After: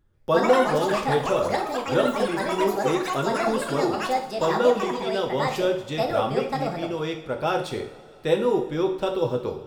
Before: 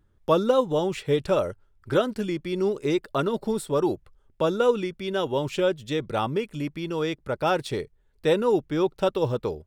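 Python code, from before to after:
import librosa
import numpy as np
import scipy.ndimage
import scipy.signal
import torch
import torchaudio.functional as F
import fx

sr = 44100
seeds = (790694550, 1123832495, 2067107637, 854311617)

y = fx.echo_pitch(x, sr, ms=142, semitones=6, count=3, db_per_echo=-3.0)
y = fx.rev_double_slope(y, sr, seeds[0], early_s=0.53, late_s=3.0, knee_db=-18, drr_db=2.5)
y = F.gain(torch.from_numpy(y), -2.5).numpy()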